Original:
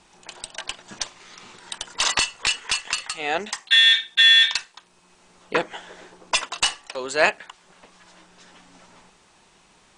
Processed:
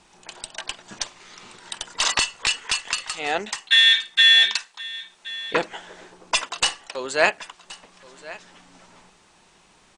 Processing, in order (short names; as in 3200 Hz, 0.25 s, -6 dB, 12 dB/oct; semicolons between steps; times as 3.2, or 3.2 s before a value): 4.22–5.54 low shelf 340 Hz -10.5 dB; echo 1.074 s -19 dB